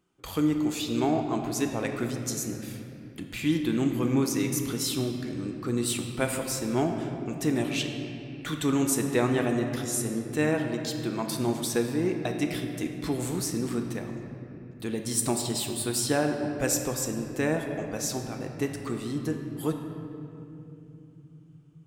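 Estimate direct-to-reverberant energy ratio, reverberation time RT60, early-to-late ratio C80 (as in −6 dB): 3.5 dB, 2.9 s, 6.0 dB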